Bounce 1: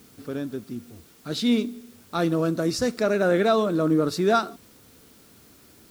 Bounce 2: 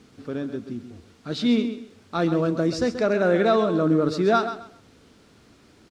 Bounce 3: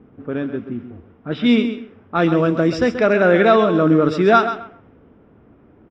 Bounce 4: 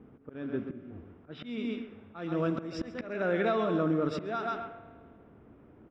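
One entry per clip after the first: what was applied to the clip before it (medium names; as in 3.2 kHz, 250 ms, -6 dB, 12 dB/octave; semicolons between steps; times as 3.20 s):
distance through air 96 m; on a send: feedback delay 132 ms, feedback 23%, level -10.5 dB; on the sum: trim +1 dB
level-controlled noise filter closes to 740 Hz, open at -18 dBFS; Savitzky-Golay filter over 25 samples; treble shelf 2.2 kHz +11.5 dB; trim +5.5 dB
compression 20:1, threshold -18 dBFS, peak gain reduction 11.5 dB; slow attack 294 ms; on a send at -13 dB: reverberation RT60 1.7 s, pre-delay 68 ms; on the sum: trim -6 dB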